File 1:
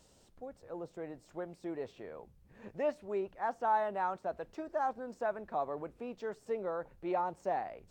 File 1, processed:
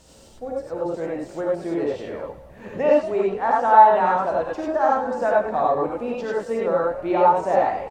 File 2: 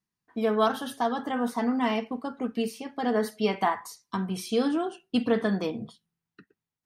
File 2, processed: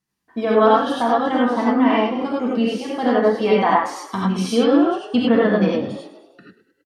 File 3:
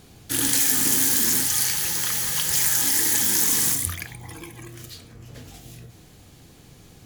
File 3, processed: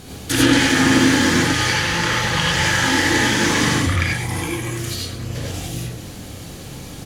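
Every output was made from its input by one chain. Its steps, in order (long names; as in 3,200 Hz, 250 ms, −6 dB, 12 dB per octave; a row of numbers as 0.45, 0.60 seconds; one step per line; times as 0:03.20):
echo with shifted repeats 104 ms, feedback 58%, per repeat +36 Hz, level −15 dB
treble cut that deepens with the level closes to 2,600 Hz, closed at −22 dBFS
reverb whose tail is shaped and stops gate 120 ms rising, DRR −3.5 dB
normalise the peak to −2 dBFS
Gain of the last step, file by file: +10.5, +5.0, +10.0 decibels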